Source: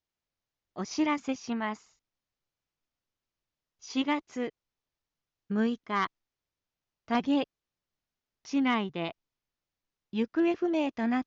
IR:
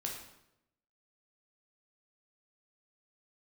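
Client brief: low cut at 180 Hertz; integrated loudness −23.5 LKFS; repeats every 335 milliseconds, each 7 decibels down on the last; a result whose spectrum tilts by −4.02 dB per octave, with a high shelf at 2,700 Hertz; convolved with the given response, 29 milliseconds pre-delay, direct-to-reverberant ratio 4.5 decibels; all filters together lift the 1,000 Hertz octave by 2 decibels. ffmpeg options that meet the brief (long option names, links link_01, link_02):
-filter_complex "[0:a]highpass=180,equalizer=frequency=1000:width_type=o:gain=3.5,highshelf=frequency=2700:gain=-7,aecho=1:1:335|670|1005|1340|1675:0.447|0.201|0.0905|0.0407|0.0183,asplit=2[link_01][link_02];[1:a]atrim=start_sample=2205,adelay=29[link_03];[link_02][link_03]afir=irnorm=-1:irlink=0,volume=-5dB[link_04];[link_01][link_04]amix=inputs=2:normalize=0,volume=6.5dB"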